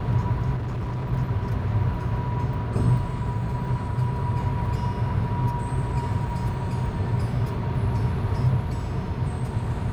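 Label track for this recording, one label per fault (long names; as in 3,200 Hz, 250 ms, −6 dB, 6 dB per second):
0.560000	1.130000	clipping −25.5 dBFS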